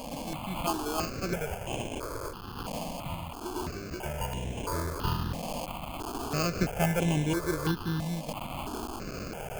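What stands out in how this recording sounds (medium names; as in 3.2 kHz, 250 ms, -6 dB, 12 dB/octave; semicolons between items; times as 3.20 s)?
a quantiser's noise floor 6-bit, dither triangular; random-step tremolo 3.5 Hz; aliases and images of a low sample rate 1.9 kHz, jitter 0%; notches that jump at a steady rate 3 Hz 380–4600 Hz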